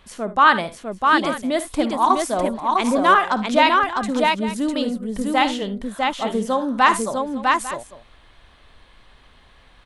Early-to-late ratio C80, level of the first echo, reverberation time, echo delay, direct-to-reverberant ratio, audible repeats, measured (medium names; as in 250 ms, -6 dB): no reverb, -14.0 dB, no reverb, 55 ms, no reverb, 3